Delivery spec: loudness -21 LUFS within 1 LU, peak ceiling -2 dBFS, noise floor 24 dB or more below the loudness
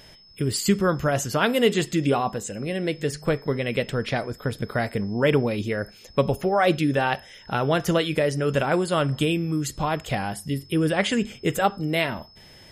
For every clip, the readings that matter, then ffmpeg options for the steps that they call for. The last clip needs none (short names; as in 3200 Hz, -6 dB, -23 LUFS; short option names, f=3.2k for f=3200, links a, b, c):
steady tone 5200 Hz; tone level -50 dBFS; loudness -24.5 LUFS; peak -7.5 dBFS; loudness target -21.0 LUFS
-> -af "bandreject=f=5.2k:w=30"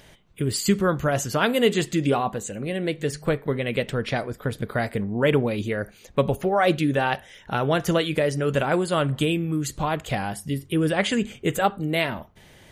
steady tone none; loudness -24.5 LUFS; peak -7.5 dBFS; loudness target -21.0 LUFS
-> -af "volume=3.5dB"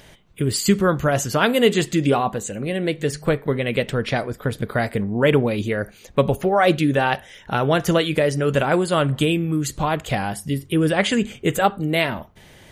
loudness -21.0 LUFS; peak -4.0 dBFS; noise floor -48 dBFS